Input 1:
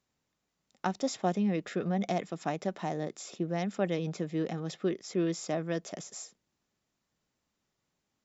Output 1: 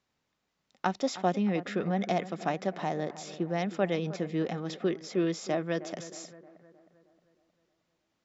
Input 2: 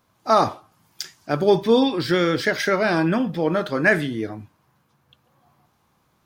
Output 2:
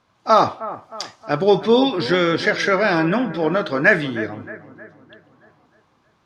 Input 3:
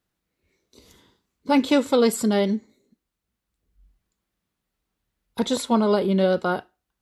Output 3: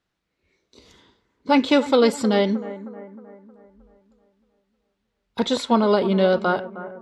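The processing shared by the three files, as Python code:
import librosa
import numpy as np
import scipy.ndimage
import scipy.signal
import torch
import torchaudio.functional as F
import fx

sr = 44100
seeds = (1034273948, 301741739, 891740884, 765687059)

p1 = scipy.signal.sosfilt(scipy.signal.butter(2, 5200.0, 'lowpass', fs=sr, output='sos'), x)
p2 = fx.low_shelf(p1, sr, hz=420.0, db=-4.5)
p3 = p2 + fx.echo_bbd(p2, sr, ms=312, stages=4096, feedback_pct=50, wet_db=-15.0, dry=0)
y = p3 * 10.0 ** (4.0 / 20.0)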